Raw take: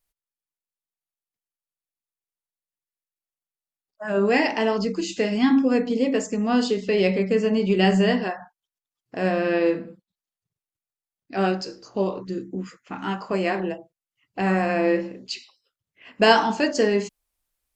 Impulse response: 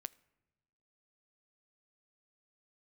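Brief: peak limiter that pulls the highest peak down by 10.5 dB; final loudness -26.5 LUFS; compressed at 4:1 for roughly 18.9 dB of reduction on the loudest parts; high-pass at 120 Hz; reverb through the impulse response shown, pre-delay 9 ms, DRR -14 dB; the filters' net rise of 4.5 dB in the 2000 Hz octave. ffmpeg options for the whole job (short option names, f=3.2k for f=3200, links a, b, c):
-filter_complex "[0:a]highpass=120,equalizer=f=2k:t=o:g=5.5,acompressor=threshold=-33dB:ratio=4,alimiter=level_in=4.5dB:limit=-24dB:level=0:latency=1,volume=-4.5dB,asplit=2[a][b];[1:a]atrim=start_sample=2205,adelay=9[c];[b][c]afir=irnorm=-1:irlink=0,volume=18dB[d];[a][d]amix=inputs=2:normalize=0,volume=-2.5dB"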